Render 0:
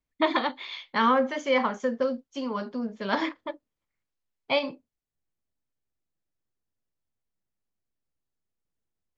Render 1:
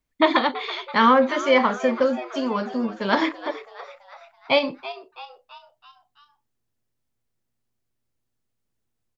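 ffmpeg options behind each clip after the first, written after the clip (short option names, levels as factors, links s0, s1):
-filter_complex "[0:a]asplit=6[s0][s1][s2][s3][s4][s5];[s1]adelay=331,afreqshift=120,volume=0.178[s6];[s2]adelay=662,afreqshift=240,volume=0.0923[s7];[s3]adelay=993,afreqshift=360,volume=0.0479[s8];[s4]adelay=1324,afreqshift=480,volume=0.0251[s9];[s5]adelay=1655,afreqshift=600,volume=0.013[s10];[s0][s6][s7][s8][s9][s10]amix=inputs=6:normalize=0,volume=2"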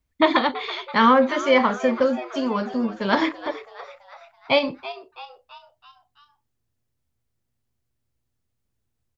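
-af "equalizer=f=72:w=1:g=11.5"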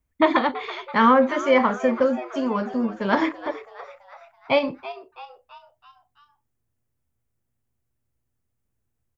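-af "equalizer=f=4100:w=1.3:g=-8.5"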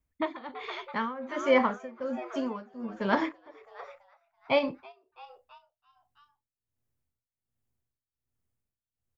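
-af "tremolo=f=1.3:d=0.9,volume=0.596"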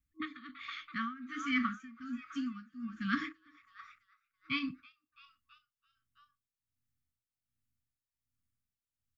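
-af "afftfilt=real='re*(1-between(b*sr/4096,320,1100))':imag='im*(1-between(b*sr/4096,320,1100))':win_size=4096:overlap=0.75,volume=0.668"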